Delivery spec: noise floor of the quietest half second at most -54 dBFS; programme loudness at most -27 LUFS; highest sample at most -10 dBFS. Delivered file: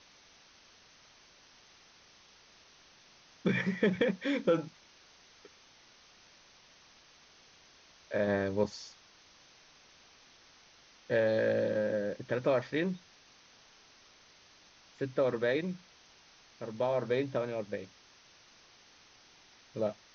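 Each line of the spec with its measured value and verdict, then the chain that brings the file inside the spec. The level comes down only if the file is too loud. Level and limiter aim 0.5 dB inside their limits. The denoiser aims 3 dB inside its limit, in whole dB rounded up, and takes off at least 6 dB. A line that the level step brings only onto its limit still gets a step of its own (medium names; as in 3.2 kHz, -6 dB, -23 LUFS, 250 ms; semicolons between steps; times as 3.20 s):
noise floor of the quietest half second -60 dBFS: pass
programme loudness -32.5 LUFS: pass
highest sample -15.5 dBFS: pass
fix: none needed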